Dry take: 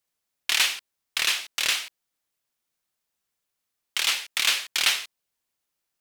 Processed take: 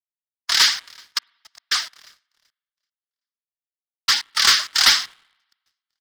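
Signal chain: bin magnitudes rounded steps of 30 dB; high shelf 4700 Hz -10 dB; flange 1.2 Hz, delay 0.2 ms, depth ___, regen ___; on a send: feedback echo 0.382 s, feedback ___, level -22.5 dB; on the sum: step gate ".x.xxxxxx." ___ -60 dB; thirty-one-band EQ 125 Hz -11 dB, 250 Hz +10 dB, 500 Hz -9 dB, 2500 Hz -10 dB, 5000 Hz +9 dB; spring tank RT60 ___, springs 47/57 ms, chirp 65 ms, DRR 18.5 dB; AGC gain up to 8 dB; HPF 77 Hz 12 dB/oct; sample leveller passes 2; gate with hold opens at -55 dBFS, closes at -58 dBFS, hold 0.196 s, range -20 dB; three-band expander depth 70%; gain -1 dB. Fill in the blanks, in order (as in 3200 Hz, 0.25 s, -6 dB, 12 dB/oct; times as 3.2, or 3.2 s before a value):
2.7 ms, +65%, 55%, 114 bpm, 2.6 s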